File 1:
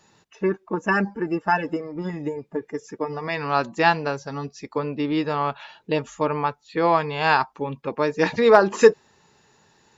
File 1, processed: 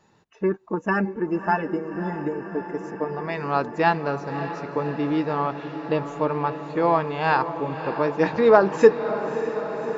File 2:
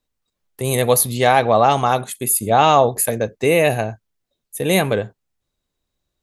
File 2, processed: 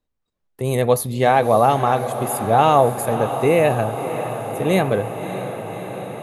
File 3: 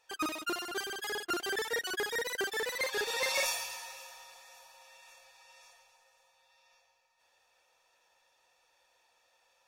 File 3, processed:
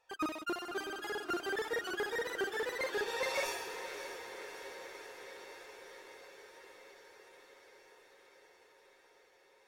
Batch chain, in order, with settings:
high shelf 2400 Hz -11 dB; diffused feedback echo 0.594 s, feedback 75%, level -11 dB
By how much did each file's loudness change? -1.0, -2.0, -5.0 LU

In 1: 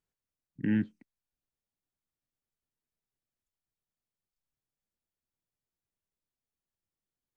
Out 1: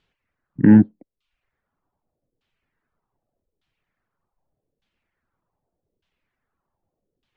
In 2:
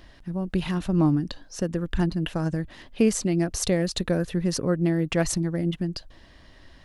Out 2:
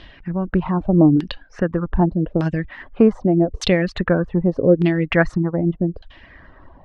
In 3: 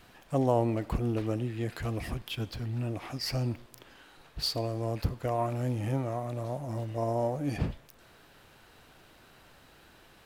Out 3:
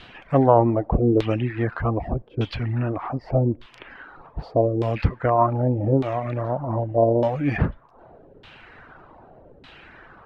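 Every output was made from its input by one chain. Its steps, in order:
LFO low-pass saw down 0.83 Hz 410–3500 Hz; reverb removal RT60 0.51 s; normalise peaks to -2 dBFS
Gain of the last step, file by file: +17.0, +6.5, +9.5 dB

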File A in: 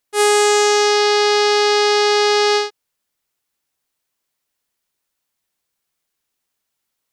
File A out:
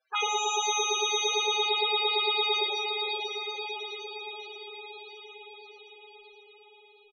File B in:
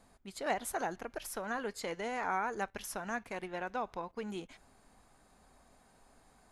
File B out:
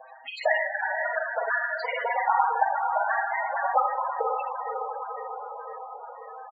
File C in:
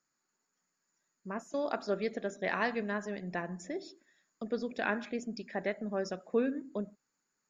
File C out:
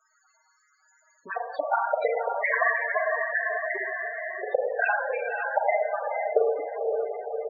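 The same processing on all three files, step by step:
comb 6.4 ms, depth 53%; limiter -9 dBFS; speakerphone echo 0.1 s, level -11 dB; transient shaper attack +6 dB, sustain -8 dB; LFO high-pass saw up 8.8 Hz 550–4400 Hz; envelope flanger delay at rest 7.8 ms, full sweep at -20 dBFS; air absorption 50 m; on a send: diffused feedback echo 0.522 s, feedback 54%, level -6.5 dB; on the sum: Schroeder reverb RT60 0.87 s, combs from 33 ms, DRR -0.5 dB; loudest bins only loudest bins 16; three-band squash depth 40%; match loudness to -27 LUFS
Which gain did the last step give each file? -5.5, +9.5, +8.0 dB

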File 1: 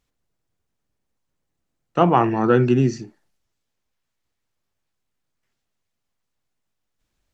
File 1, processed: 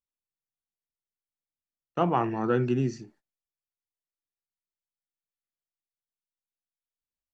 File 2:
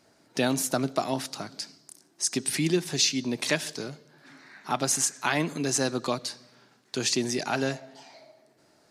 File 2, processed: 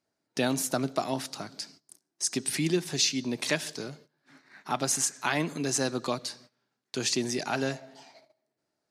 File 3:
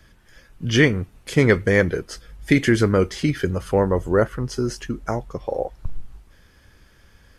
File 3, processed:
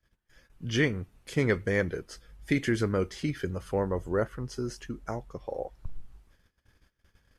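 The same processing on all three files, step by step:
gate -50 dBFS, range -18 dB; normalise peaks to -12 dBFS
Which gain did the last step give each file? -9.0, -2.0, -10.0 dB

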